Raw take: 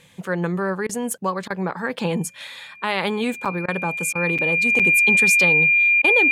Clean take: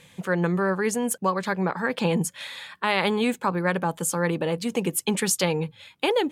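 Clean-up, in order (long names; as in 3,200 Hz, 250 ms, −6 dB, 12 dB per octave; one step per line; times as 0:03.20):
notch filter 2,400 Hz, Q 30
repair the gap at 0:03.45/0:04.38/0:04.79, 6.6 ms
repair the gap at 0:00.87/0:01.48/0:03.66/0:04.13/0:06.02, 21 ms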